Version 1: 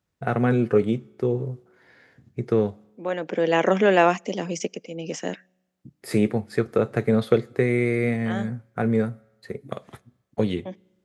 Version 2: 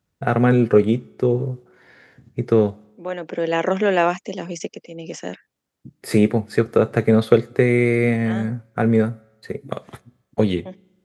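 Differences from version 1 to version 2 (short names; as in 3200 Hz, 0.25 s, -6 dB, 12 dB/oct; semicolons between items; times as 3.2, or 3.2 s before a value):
first voice +5.0 dB; second voice: send off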